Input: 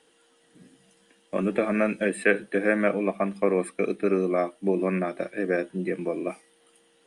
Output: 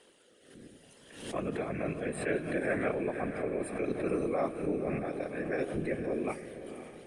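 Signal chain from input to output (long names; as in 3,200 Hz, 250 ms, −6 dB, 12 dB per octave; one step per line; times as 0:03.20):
parametric band 160 Hz −6 dB 0.61 octaves
reversed playback
downward compressor 5 to 1, threshold −33 dBFS, peak gain reduction 15.5 dB
reversed playback
rotating-speaker cabinet horn 0.65 Hz, later 6.3 Hz, at 0:05.77
random phases in short frames
feedback delay with all-pass diffusion 521 ms, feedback 46%, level −11 dB
on a send at −18 dB: convolution reverb RT60 0.90 s, pre-delay 15 ms
on the sum: background raised ahead of every attack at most 80 dB per second
level +4 dB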